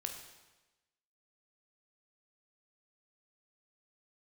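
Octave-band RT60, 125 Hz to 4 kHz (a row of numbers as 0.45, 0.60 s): 1.1, 1.1, 1.1, 1.1, 1.1, 1.0 s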